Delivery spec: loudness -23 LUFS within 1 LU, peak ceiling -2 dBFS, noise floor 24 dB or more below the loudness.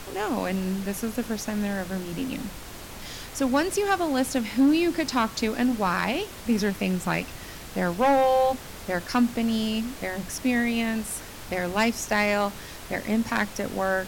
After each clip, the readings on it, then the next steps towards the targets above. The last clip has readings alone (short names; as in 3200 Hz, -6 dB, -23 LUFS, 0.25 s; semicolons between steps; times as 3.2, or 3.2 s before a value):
clipped 0.5%; flat tops at -14.5 dBFS; noise floor -41 dBFS; noise floor target -50 dBFS; loudness -26.0 LUFS; peak -14.5 dBFS; loudness target -23.0 LUFS
-> clip repair -14.5 dBFS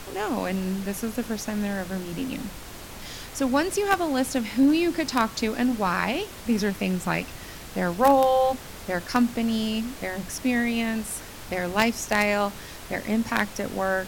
clipped 0.0%; noise floor -41 dBFS; noise floor target -50 dBFS
-> noise print and reduce 9 dB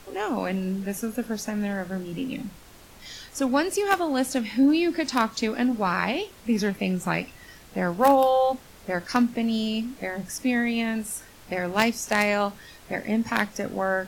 noise floor -49 dBFS; noise floor target -50 dBFS
-> noise print and reduce 6 dB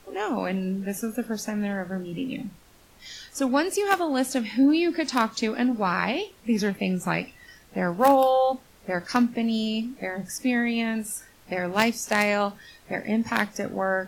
noise floor -54 dBFS; loudness -25.5 LUFS; peak -5.5 dBFS; loudness target -23.0 LUFS
-> gain +2.5 dB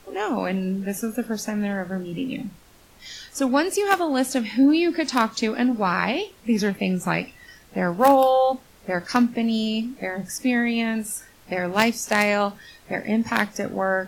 loudness -23.0 LUFS; peak -3.0 dBFS; noise floor -52 dBFS